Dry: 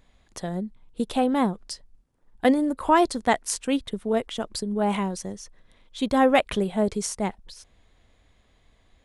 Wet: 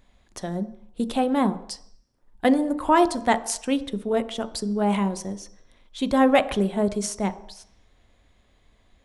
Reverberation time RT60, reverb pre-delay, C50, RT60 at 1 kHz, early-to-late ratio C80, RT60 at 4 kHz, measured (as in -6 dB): 0.70 s, 3 ms, 16.0 dB, 0.75 s, 18.0 dB, 0.70 s